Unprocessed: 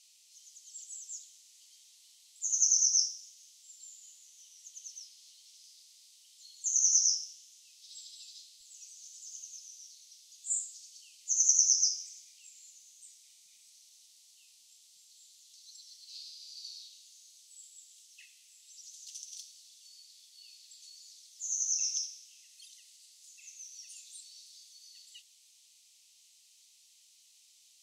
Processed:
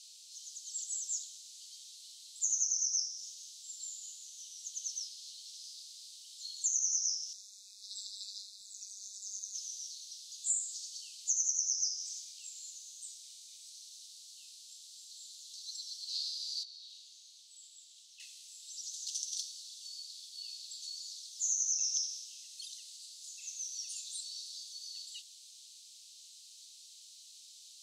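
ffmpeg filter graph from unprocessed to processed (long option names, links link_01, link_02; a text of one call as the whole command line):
ffmpeg -i in.wav -filter_complex "[0:a]asettb=1/sr,asplit=3[link_01][link_02][link_03];[link_01]atrim=end=7.334[link_04];[link_02]atrim=start=7.33:end=9.55,asetpts=PTS-STARTPTS,afade=type=in:duration=0.004:curve=qsin,afade=type=out:start_time=2.216:duration=0.004:curve=qsin,tremolo=f=200:d=0.919,asuperstop=centerf=3000:order=12:qfactor=3.4[link_05];[link_03]atrim=start=9.546[link_06];[link_04][link_05]acrossfade=duration=0.004:curve1=hsin:curve2=qsin[link_07];[link_07][link_06]acrossfade=duration=0.004:curve1=qsin:curve2=hsin,asettb=1/sr,asplit=3[link_08][link_09][link_10];[link_08]atrim=end=16.634[link_11];[link_09]atrim=start=16.63:end=18.2,asetpts=PTS-STARTPTS,afade=type=in:duration=0.004:curve=qsin,afade=type=out:start_time=1.566:duration=0.004:curve=qsin,bass=frequency=250:gain=7,treble=frequency=4000:gain=-10,acompressor=threshold=-56dB:ratio=12:attack=3.2:release=140:knee=1:detection=peak[link_12];[link_10]atrim=start=18.196[link_13];[link_11][link_12]acrossfade=duration=0.004:curve1=hsin:curve2=qsin[link_14];[link_14][link_13]acrossfade=duration=0.004:curve1=qsin:curve2=hsin,equalizer=frequency=2000:width_type=o:width=1:gain=-8,equalizer=frequency=4000:width_type=o:width=1:gain=11,equalizer=frequency=8000:width_type=o:width=1:gain=5,acompressor=threshold=-29dB:ratio=12" out.wav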